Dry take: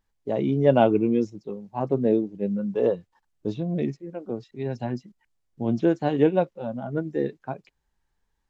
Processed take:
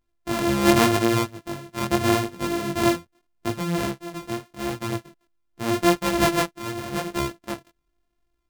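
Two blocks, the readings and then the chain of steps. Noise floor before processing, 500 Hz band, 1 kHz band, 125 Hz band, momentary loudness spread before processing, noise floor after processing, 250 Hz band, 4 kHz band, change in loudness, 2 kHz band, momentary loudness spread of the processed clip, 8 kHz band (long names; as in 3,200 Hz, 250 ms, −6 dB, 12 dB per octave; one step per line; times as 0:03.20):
−75 dBFS, −2.0 dB, +5.5 dB, +0.5 dB, 15 LU, −74 dBFS, +1.0 dB, +16.5 dB, +1.5 dB, +11.5 dB, 15 LU, can't be measured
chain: samples sorted by size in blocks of 128 samples
chorus effect 0.83 Hz, delay 16.5 ms, depth 7.6 ms
level +3.5 dB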